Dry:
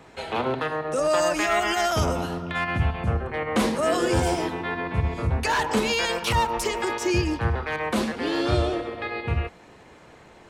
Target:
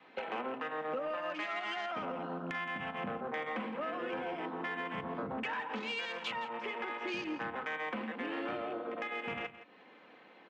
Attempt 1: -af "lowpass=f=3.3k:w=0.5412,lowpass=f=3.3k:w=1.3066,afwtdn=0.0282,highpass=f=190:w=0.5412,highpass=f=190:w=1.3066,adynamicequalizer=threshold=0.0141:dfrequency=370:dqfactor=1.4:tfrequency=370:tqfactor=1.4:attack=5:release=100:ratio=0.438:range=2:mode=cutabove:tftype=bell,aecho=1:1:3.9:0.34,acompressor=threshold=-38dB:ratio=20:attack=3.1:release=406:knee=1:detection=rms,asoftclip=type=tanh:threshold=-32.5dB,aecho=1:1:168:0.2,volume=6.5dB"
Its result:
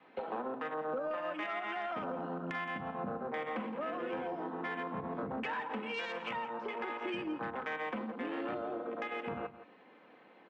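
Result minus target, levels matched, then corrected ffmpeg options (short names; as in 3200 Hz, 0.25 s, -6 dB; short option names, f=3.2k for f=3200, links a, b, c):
4000 Hz band -4.5 dB
-af "lowpass=f=3.3k:w=0.5412,lowpass=f=3.3k:w=1.3066,highshelf=f=2.2k:g=8.5,afwtdn=0.0282,highpass=f=190:w=0.5412,highpass=f=190:w=1.3066,adynamicequalizer=threshold=0.0141:dfrequency=370:dqfactor=1.4:tfrequency=370:tqfactor=1.4:attack=5:release=100:ratio=0.438:range=2:mode=cutabove:tftype=bell,aecho=1:1:3.9:0.34,acompressor=threshold=-38dB:ratio=20:attack=3.1:release=406:knee=1:detection=rms,asoftclip=type=tanh:threshold=-32.5dB,aecho=1:1:168:0.2,volume=6.5dB"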